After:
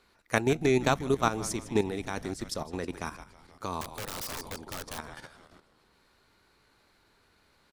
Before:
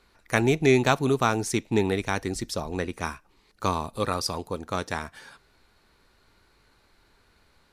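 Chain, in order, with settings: low shelf 64 Hz -10 dB; frequency-shifting echo 0.157 s, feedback 61%, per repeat -110 Hz, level -15 dB; level quantiser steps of 11 dB; 3.81–4.99 wrapped overs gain 30 dB; dynamic EQ 2300 Hz, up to -3 dB, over -43 dBFS, Q 0.88

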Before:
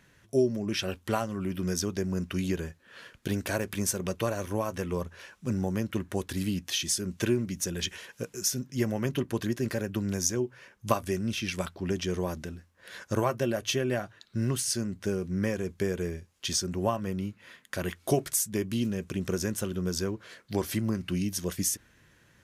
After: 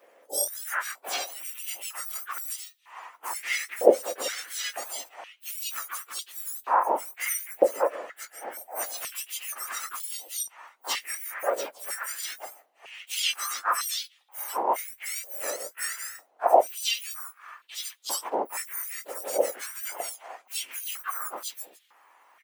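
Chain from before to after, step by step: spectrum mirrored in octaves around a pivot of 1800 Hz; harmoniser -7 st -6 dB, +5 st -6 dB, +7 st -10 dB; stepped high-pass 2.1 Hz 550–3600 Hz

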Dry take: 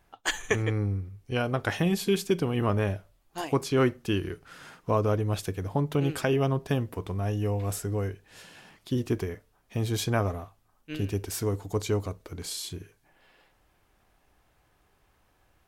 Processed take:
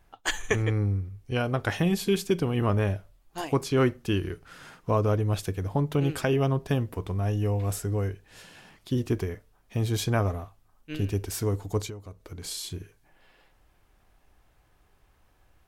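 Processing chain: low shelf 69 Hz +8.5 dB; 11.85–12.43 compressor 12:1, threshold -36 dBFS, peak gain reduction 16.5 dB

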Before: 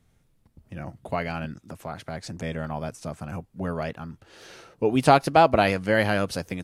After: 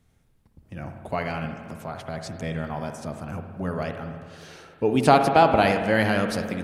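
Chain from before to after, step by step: analogue delay 87 ms, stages 1024, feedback 76%, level -15 dB; spring tank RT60 1.6 s, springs 55 ms, chirp 55 ms, DRR 7 dB

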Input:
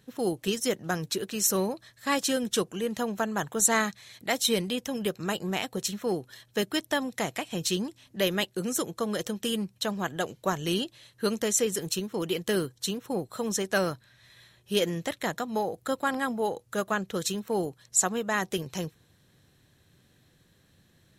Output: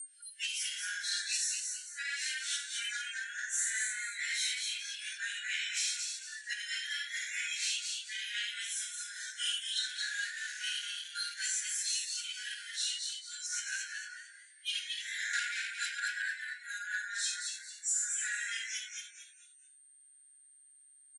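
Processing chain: phase scrambler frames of 0.2 s; whine 8700 Hz -45 dBFS; spectral noise reduction 28 dB; harmonic-percussive split harmonic +9 dB; compressor 6:1, threshold -35 dBFS, peak gain reduction 19.5 dB; 9.89–11.34 sample gate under -42.5 dBFS; 15.33–16 sample leveller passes 3; on a send: frequency-shifting echo 0.223 s, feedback 33%, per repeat +140 Hz, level -4.5 dB; on the sum: soft clip -27.5 dBFS, distortion -19 dB; FFT band-pass 1400–11000 Hz; gain +4.5 dB

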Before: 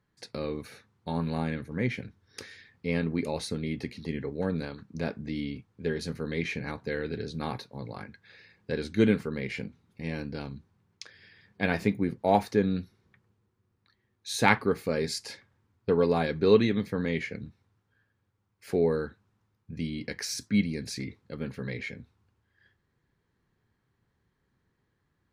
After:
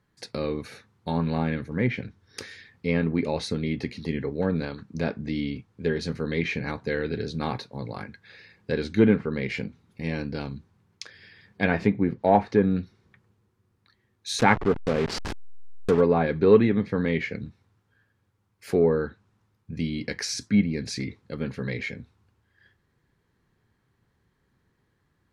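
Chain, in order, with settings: 14.39–16.01 level-crossing sampler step -29 dBFS; in parallel at -5.5 dB: soft clip -14.5 dBFS, distortion -16 dB; on the sum: treble ducked by the level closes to 2000 Hz, closed at -18.5 dBFS; gain +1 dB

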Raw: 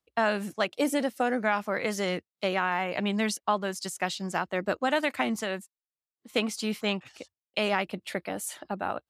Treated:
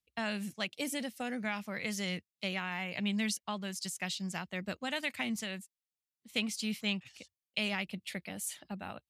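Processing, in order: band shelf 670 Hz -11 dB 2.8 oct; gain -2.5 dB

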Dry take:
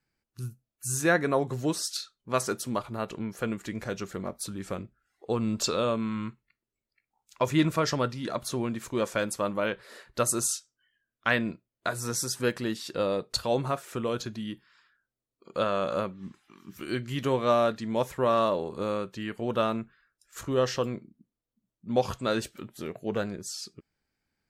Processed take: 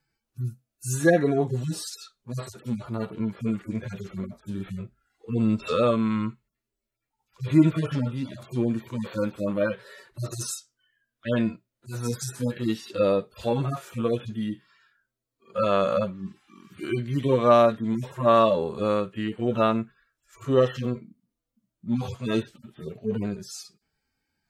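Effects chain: median-filter separation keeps harmonic; gain +6.5 dB

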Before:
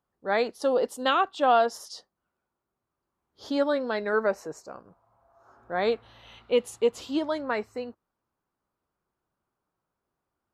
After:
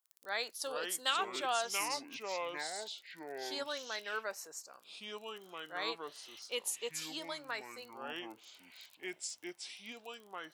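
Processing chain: crackle 15/s -44 dBFS; echoes that change speed 0.328 s, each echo -5 st, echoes 2; differentiator; gain +4.5 dB

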